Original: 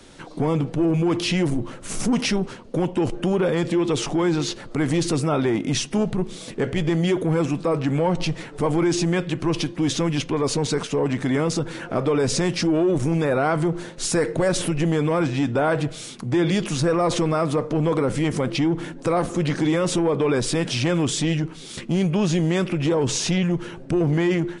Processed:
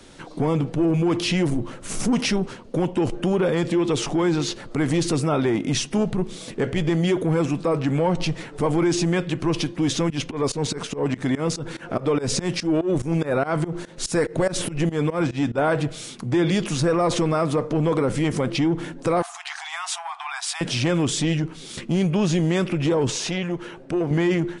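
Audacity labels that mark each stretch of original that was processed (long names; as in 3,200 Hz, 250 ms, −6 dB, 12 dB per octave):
10.100000	15.580000	fake sidechain pumping 144 BPM, dips per beat 2, −21 dB, release 143 ms
19.220000	20.610000	linear-phase brick-wall high-pass 670 Hz
23.100000	24.110000	bass and treble bass −9 dB, treble −4 dB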